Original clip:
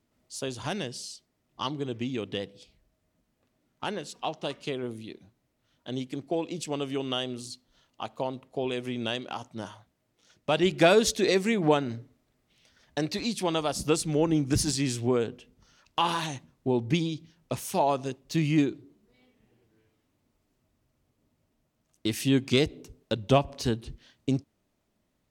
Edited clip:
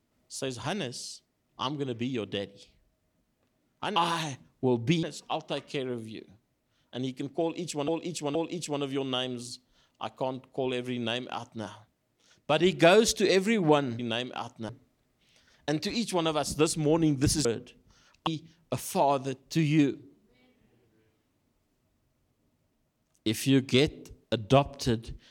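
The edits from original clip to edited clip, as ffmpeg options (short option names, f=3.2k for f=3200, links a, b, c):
-filter_complex "[0:a]asplit=9[a][b][c][d][e][f][g][h][i];[a]atrim=end=3.962[j];[b]atrim=start=15.988:end=17.062[k];[c]atrim=start=3.958:end=6.812[l];[d]atrim=start=6.338:end=6.812[m];[e]atrim=start=6.338:end=11.982[n];[f]atrim=start=8.938:end=9.642[o];[g]atrim=start=11.978:end=14.742[p];[h]atrim=start=15.168:end=15.992[q];[i]atrim=start=17.058[r];[j][k]acrossfade=d=0.004:c1=hsin:c2=hsin[s];[s][l]acrossfade=d=0.004:c1=hsin:c2=hsin[t];[t][m]acrossfade=d=0.004:c1=hsin:c2=hsin[u];[u][n]acrossfade=d=0.004:c1=hsin:c2=hsin[v];[v][o]acrossfade=d=0.004:c1=hsin:c2=hsin[w];[w][p]acrossfade=d=0.004:c1=hsin:c2=hsin[x];[x][q]acrossfade=d=0.004:c1=hsin:c2=hsin[y];[y][r]acrossfade=d=0.004:c1=hsin:c2=hsin"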